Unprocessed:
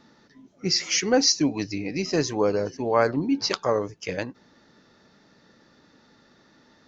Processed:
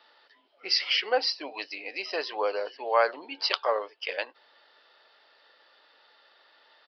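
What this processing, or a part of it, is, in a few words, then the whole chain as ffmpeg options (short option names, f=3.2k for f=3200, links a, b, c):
musical greeting card: -filter_complex "[0:a]aresample=11025,aresample=44100,highpass=f=550:w=0.5412,highpass=f=550:w=1.3066,equalizer=f=3k:t=o:w=0.31:g=10,asplit=3[a][b][c];[a]afade=t=out:st=0.91:d=0.02[d];[b]adynamicequalizer=threshold=0.0112:dfrequency=1700:dqfactor=0.7:tfrequency=1700:tqfactor=0.7:attack=5:release=100:ratio=0.375:range=3.5:mode=cutabove:tftype=highshelf,afade=t=in:st=0.91:d=0.02,afade=t=out:st=2.26:d=0.02[e];[c]afade=t=in:st=2.26:d=0.02[f];[d][e][f]amix=inputs=3:normalize=0"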